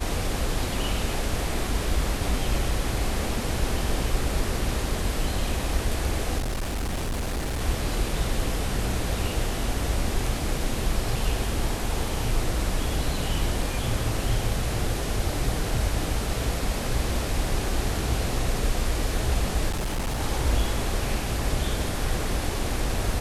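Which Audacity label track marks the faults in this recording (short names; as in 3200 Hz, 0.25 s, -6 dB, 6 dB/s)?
6.380000	7.620000	clipped -24.5 dBFS
19.690000	20.210000	clipped -23.5 dBFS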